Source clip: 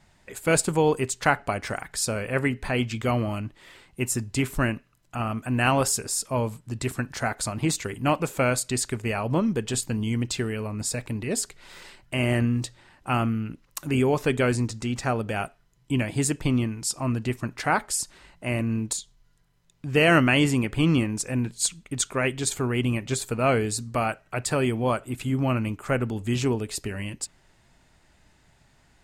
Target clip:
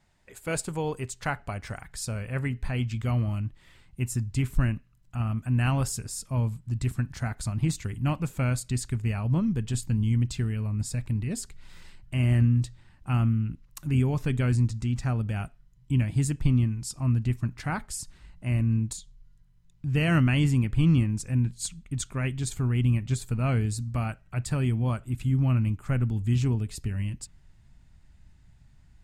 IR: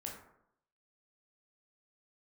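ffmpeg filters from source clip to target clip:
-af "asubboost=boost=7.5:cutoff=160,volume=0.376"

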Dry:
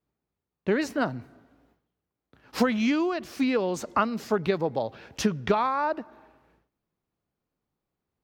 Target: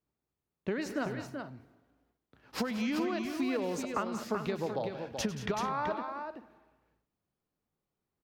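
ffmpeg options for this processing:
-af "acompressor=threshold=0.0562:ratio=5,aecho=1:1:100|178|208|381|434:0.178|0.211|0.178|0.473|0.112,volume=0.596"

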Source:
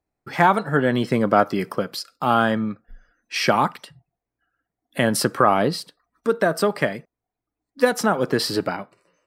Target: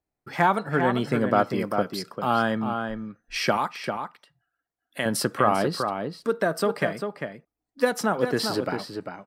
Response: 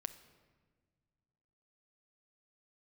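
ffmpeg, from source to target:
-filter_complex "[0:a]asettb=1/sr,asplit=3[s0][s1][s2];[s0]atrim=end=3.574[s3];[s1]atrim=start=3.57:end=5.06,asetpts=PTS-STARTPTS,afade=t=in:d=0.004:c=qsin,afade=t=out:st=1.486:d=0.004:c=qsin,lowshelf=f=430:g=-10.5[s4];[s2]atrim=start=5.056[s5];[s3][s4]acrossfade=d=0.004:c1=hsin:c2=qsin[s6];[s6][s5]acrossfade=d=0.004:c1=qsin:c2=hsin,asplit=2[s7][s8];[s8]adelay=396.5,volume=0.501,highshelf=f=4000:g=-8.92[s9];[s7][s9]amix=inputs=2:normalize=0,volume=0.596"

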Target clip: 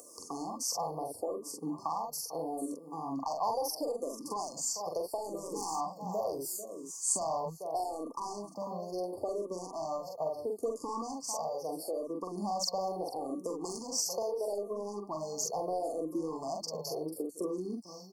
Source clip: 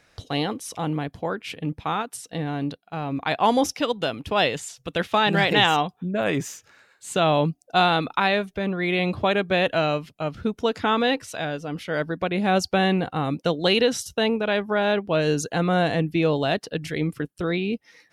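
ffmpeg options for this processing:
-filter_complex "[0:a]highpass=350,asplit=2[s0][s1];[s1]adelay=44,volume=0.708[s2];[s0][s2]amix=inputs=2:normalize=0,aecho=1:1:446:0.15,asoftclip=type=tanh:threshold=0.2,acompressor=threshold=0.0316:ratio=4,highshelf=f=5600:g=11,acompressor=mode=upward:threshold=0.0178:ratio=2.5,afftfilt=real='re*(1-between(b*sr/4096,1200,4300))':imag='im*(1-between(b*sr/4096,1200,4300))':win_size=4096:overlap=0.75,asplit=2[s3][s4];[s4]afreqshift=-0.75[s5];[s3][s5]amix=inputs=2:normalize=1"

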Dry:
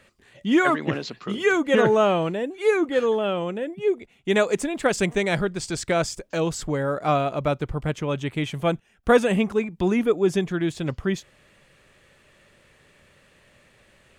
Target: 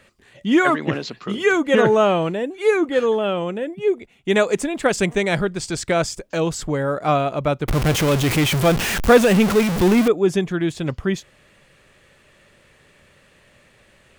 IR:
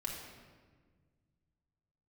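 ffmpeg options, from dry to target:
-filter_complex "[0:a]asettb=1/sr,asplit=3[s0][s1][s2];[s0]atrim=end=7.684[s3];[s1]atrim=start=7.68:end=10.08,asetpts=PTS-STARTPTS,afade=t=in:d=0.004:c=qsin,afade=t=out:st=2.396:d=0.004:c=qsin,aeval=exprs='val(0)+0.5*0.106*sgn(val(0))':c=same[s4];[s2]atrim=start=10.076[s5];[s3][s4]acrossfade=d=0.004:c1=hsin:c2=qsin[s6];[s6][s5]acrossfade=d=0.004:c1=qsin:c2=hsin,volume=1.41"

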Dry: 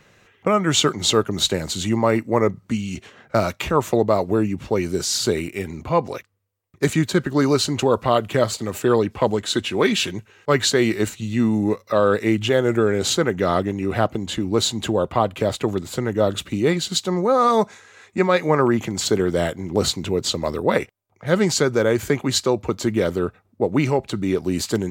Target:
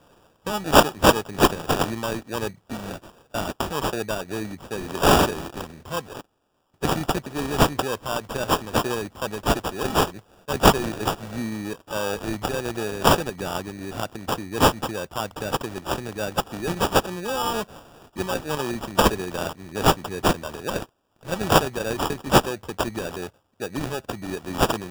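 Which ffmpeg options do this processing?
-af "highshelf=f=4400:g=12,crystalizer=i=3.5:c=0,acrusher=samples=21:mix=1:aa=0.000001,volume=0.282"

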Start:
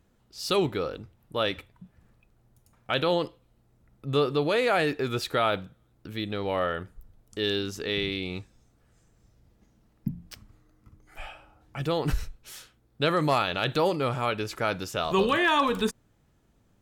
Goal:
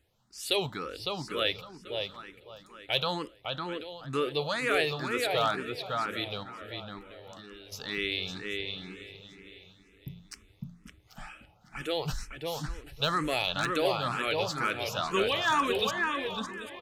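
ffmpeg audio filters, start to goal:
-filter_complex "[0:a]aemphasis=mode=reproduction:type=75kf,asplit=2[s0][s1];[s1]aecho=0:1:787|1574|2361:0.188|0.0452|0.0108[s2];[s0][s2]amix=inputs=2:normalize=0,crystalizer=i=9.5:c=0,asettb=1/sr,asplit=3[s3][s4][s5];[s3]atrim=end=6.434[s6];[s4]atrim=start=6.43:end=7.72,asetpts=PTS-STARTPTS,afade=t=in:d=0.004:c=qsin,afade=t=out:st=1.286:d=0.004:c=qsin,acompressor=threshold=0.0112:ratio=5[s7];[s5]atrim=start=7.716[s8];[s6][s7]acrossfade=d=0.004:c1=hsin:c2=qsin[s9];[s9][s8]acrossfade=d=0.004:c1=qsin:c2=hsin,asplit=2[s10][s11];[s11]adelay=556,lowpass=f=2700:p=1,volume=0.708,asplit=2[s12][s13];[s13]adelay=556,lowpass=f=2700:p=1,volume=0.23,asplit=2[s14][s15];[s15]adelay=556,lowpass=f=2700:p=1,volume=0.23[s16];[s12][s14][s16]amix=inputs=3:normalize=0[s17];[s10][s17]amix=inputs=2:normalize=0,aresample=32000,aresample=44100,aeval=exprs='0.376*(abs(mod(val(0)/0.376+3,4)-2)-1)':c=same,asplit=2[s18][s19];[s19]afreqshift=2.1[s20];[s18][s20]amix=inputs=2:normalize=1,volume=0.562"

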